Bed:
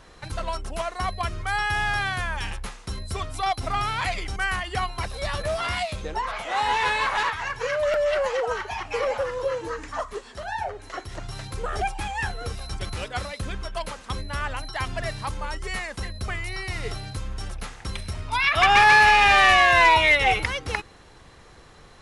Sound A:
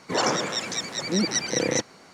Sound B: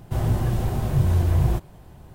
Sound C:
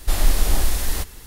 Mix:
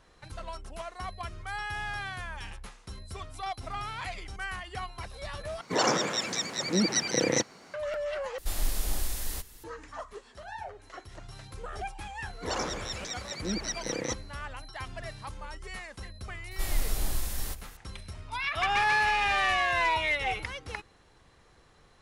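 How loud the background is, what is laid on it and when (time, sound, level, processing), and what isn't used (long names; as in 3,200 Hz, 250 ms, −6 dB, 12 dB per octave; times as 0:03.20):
bed −10.5 dB
0:05.61: overwrite with A −2 dB
0:08.38: overwrite with C −12.5 dB + high-shelf EQ 4,000 Hz +5.5 dB
0:12.33: mix in A −9 dB
0:16.51: mix in C −12 dB + high-shelf EQ 7,000 Hz +4.5 dB
not used: B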